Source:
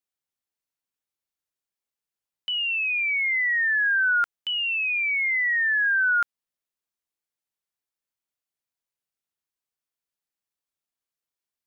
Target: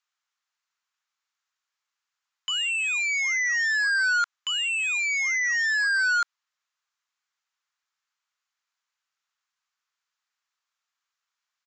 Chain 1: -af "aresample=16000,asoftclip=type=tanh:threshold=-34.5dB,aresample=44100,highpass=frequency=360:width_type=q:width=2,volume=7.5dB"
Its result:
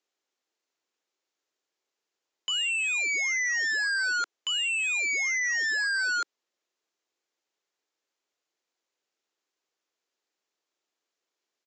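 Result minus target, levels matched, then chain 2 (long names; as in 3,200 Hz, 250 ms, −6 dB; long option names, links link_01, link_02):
500 Hz band +18.5 dB
-af "aresample=16000,asoftclip=type=tanh:threshold=-34.5dB,aresample=44100,highpass=frequency=1200:width_type=q:width=2,volume=7.5dB"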